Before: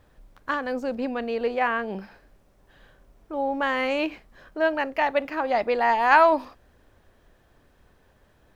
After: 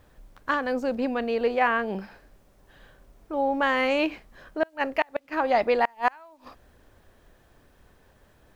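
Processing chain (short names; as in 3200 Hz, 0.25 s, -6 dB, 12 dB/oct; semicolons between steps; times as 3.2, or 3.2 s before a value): flipped gate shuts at -12 dBFS, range -34 dB; requantised 12-bit, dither none; gain +1.5 dB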